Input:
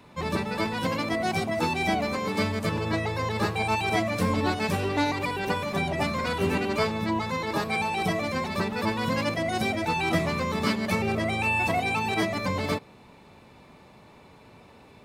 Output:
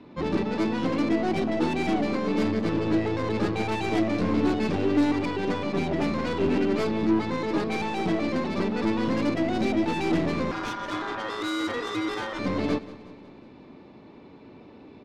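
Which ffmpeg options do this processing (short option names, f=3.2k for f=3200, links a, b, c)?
-filter_complex "[0:a]lowpass=f=5.1k:w=0.5412,lowpass=f=5.1k:w=1.3066,aeval=exprs='(tanh(25.1*val(0)+0.65)-tanh(0.65))/25.1':c=same,asettb=1/sr,asplit=3[a][b][c];[a]atrim=end=10.514[d];[b]atrim=start=10.51:end=12.39,asetpts=PTS-STARTPTS,afade=t=in:d=0.004:c=qsin,afade=t=out:st=1.876:d=0.004:c=qsin,aeval=exprs='val(0)*sin(2*PI*1200*n/s)':c=same[e];[c]atrim=start=12.386[f];[d][e]acrossfade=d=0.004:c1=hsin:c2=qsin[g];[g][f]acrossfade=d=0.004:c1=qsin:c2=hsin,equalizer=f=300:t=o:w=1.2:g=14.5,asplit=2[h][i];[i]aecho=0:1:182|364|546|728|910:0.133|0.0733|0.0403|0.0222|0.0122[j];[h][j]amix=inputs=2:normalize=0"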